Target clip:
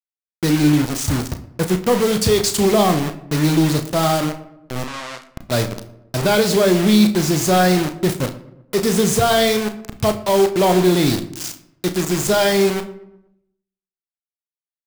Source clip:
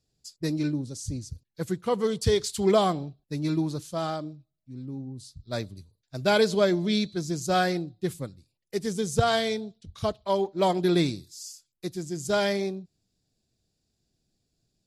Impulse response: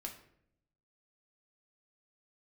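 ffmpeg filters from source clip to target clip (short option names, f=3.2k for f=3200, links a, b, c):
-filter_complex "[0:a]alimiter=limit=-18.5dB:level=0:latency=1,dynaudnorm=f=100:g=7:m=13dB,acrusher=bits=3:mix=0:aa=0.000001,asoftclip=type=tanh:threshold=-9dB,asettb=1/sr,asplit=3[a][b][c];[a]atrim=end=4.844[d];[b]atrim=start=4.84:end=5.33,asetpts=PTS-STARTPTS,afade=t=in:d=0.004:c=qsin,afade=t=out:st=0.486:d=0.004:c=qsin,highpass=800,lowpass=6.9k[e];[c]atrim=start=5.326[f];[d][e]acrossfade=d=0.004:c1=hsin:c2=qsin[g];[g][f]acrossfade=d=0.004:c1=qsin:c2=hsin,asplit=2[h][i];[i]adelay=119,lowpass=f=1.7k:p=1,volume=-19dB,asplit=2[j][k];[k]adelay=119,lowpass=f=1.7k:p=1,volume=0.54,asplit=2[l][m];[m]adelay=119,lowpass=f=1.7k:p=1,volume=0.54,asplit=2[n][o];[o]adelay=119,lowpass=f=1.7k:p=1,volume=0.54[p];[h][j][l][n][p]amix=inputs=5:normalize=0,asplit=2[q][r];[1:a]atrim=start_sample=2205,adelay=33[s];[r][s]afir=irnorm=-1:irlink=0,volume=-5dB[t];[q][t]amix=inputs=2:normalize=0"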